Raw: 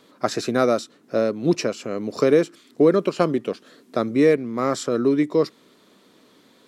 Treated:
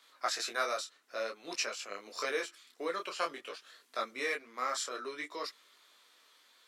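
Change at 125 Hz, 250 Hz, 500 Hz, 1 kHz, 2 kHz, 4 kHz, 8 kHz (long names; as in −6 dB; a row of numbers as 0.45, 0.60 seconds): below −35 dB, −28.5 dB, −19.5 dB, −8.5 dB, −4.5 dB, −4.0 dB, −4.0 dB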